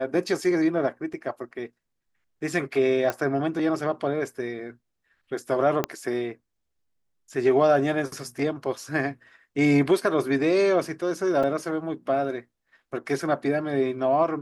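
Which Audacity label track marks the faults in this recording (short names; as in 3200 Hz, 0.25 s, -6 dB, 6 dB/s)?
1.130000	1.130000	gap 4.9 ms
3.100000	3.100000	pop -13 dBFS
5.840000	5.840000	pop -10 dBFS
11.430000	11.440000	gap 5.1 ms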